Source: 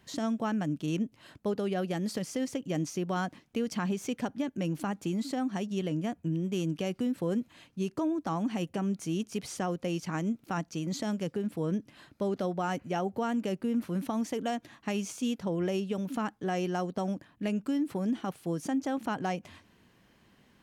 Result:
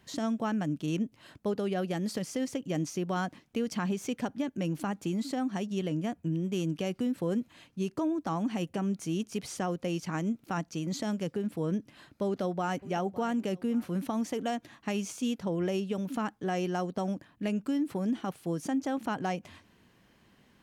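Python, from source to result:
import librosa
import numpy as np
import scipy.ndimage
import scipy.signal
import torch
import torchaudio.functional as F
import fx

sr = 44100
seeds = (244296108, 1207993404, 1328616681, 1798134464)

y = fx.echo_throw(x, sr, start_s=12.26, length_s=0.63, ms=560, feedback_pct=40, wet_db=-17.5)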